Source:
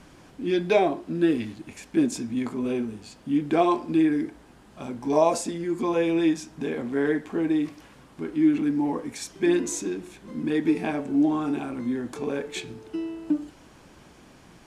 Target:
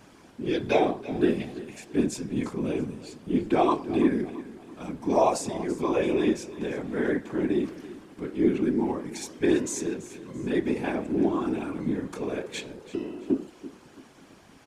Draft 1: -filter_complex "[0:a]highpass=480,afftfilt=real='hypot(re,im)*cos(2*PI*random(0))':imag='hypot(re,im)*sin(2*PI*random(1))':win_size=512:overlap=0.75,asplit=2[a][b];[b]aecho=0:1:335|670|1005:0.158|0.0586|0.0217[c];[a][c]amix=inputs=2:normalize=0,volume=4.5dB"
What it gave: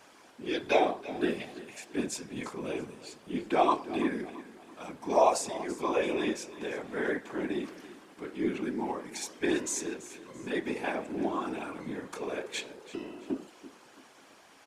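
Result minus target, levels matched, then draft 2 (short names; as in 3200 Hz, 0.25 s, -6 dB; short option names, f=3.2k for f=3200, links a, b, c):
125 Hz band -6.0 dB
-filter_complex "[0:a]highpass=130,afftfilt=real='hypot(re,im)*cos(2*PI*random(0))':imag='hypot(re,im)*sin(2*PI*random(1))':win_size=512:overlap=0.75,asplit=2[a][b];[b]aecho=0:1:335|670|1005:0.158|0.0586|0.0217[c];[a][c]amix=inputs=2:normalize=0,volume=4.5dB"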